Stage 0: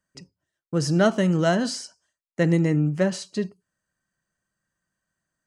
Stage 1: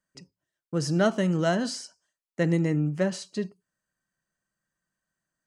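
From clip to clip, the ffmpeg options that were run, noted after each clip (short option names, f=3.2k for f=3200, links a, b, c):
-af "equalizer=f=86:t=o:w=0.35:g=-12.5,volume=-3.5dB"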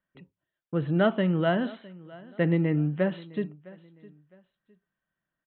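-af "aecho=1:1:659|1318:0.0891|0.0276,aresample=8000,aresample=44100"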